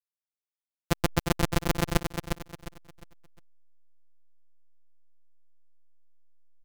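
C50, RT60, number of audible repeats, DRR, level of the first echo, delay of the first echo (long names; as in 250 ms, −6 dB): no reverb audible, no reverb audible, 3, no reverb audible, −6.0 dB, 355 ms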